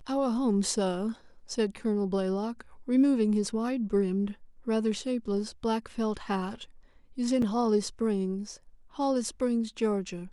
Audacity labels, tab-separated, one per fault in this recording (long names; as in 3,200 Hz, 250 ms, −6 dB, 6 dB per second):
7.420000	7.420000	drop-out 3.6 ms